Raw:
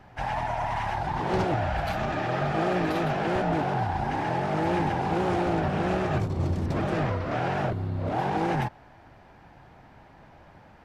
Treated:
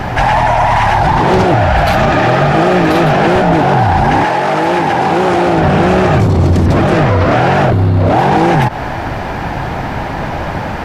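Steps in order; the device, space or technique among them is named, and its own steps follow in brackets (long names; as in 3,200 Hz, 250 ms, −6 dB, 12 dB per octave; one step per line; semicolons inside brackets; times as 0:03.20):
loud club master (downward compressor 2.5 to 1, threshold −31 dBFS, peak gain reduction 7 dB; hard clipping −25.5 dBFS, distortion −23 dB; boost into a limiter +35.5 dB)
0:04.24–0:05.56: high-pass filter 590 Hz → 180 Hz 6 dB per octave
level −2.5 dB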